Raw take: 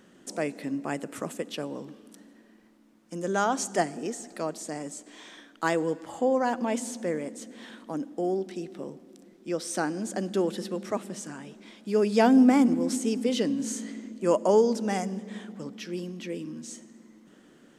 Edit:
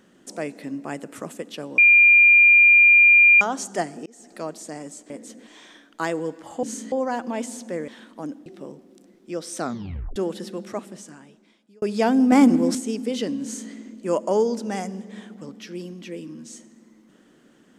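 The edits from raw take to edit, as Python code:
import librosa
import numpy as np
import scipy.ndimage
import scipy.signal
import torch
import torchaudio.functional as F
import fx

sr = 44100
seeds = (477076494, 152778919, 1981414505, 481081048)

y = fx.edit(x, sr, fx.bleep(start_s=1.78, length_s=1.63, hz=2400.0, db=-9.5),
    fx.fade_in_span(start_s=4.06, length_s=0.32),
    fx.move(start_s=7.22, length_s=0.37, to_s=5.1),
    fx.cut(start_s=8.17, length_s=0.47),
    fx.tape_stop(start_s=9.77, length_s=0.57),
    fx.fade_out_span(start_s=10.86, length_s=1.14),
    fx.clip_gain(start_s=12.5, length_s=0.43, db=6.5),
    fx.duplicate(start_s=13.61, length_s=0.29, to_s=6.26), tone=tone)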